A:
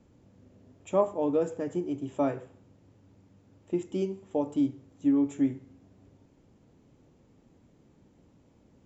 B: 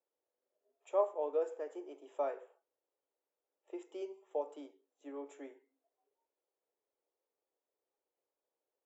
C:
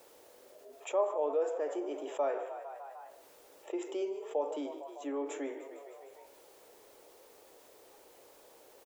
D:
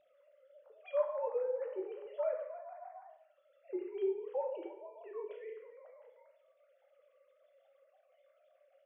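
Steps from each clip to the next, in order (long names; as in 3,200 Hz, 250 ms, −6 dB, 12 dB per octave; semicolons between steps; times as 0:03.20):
Butterworth high-pass 420 Hz 36 dB per octave; noise reduction from a noise print of the clip's start 17 dB; high-shelf EQ 2,300 Hz −9 dB; level −5 dB
echo with shifted repeats 152 ms, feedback 61%, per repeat +34 Hz, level −20 dB; envelope flattener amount 50%
three sine waves on the formant tracks; convolution reverb RT60 0.55 s, pre-delay 11 ms, DRR 3 dB; level −4 dB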